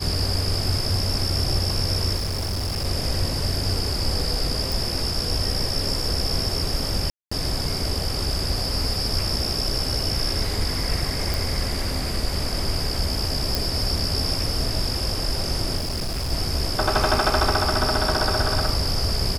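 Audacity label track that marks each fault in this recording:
2.160000	2.860000	clipped -22.5 dBFS
4.720000	4.720000	pop
7.100000	7.320000	gap 0.215 s
11.340000	11.340000	pop
13.550000	13.550000	pop
15.770000	16.320000	clipped -23 dBFS

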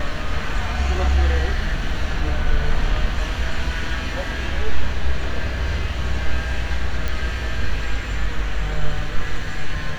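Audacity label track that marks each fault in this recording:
7.080000	7.080000	pop -11 dBFS

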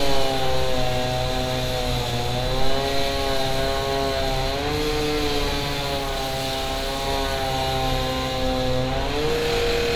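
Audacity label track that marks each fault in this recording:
5.970000	7.080000	clipped -22 dBFS

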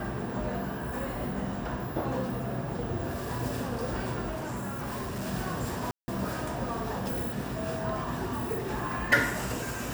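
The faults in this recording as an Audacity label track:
4.300000	5.280000	clipped -31 dBFS
5.910000	6.080000	gap 0.17 s

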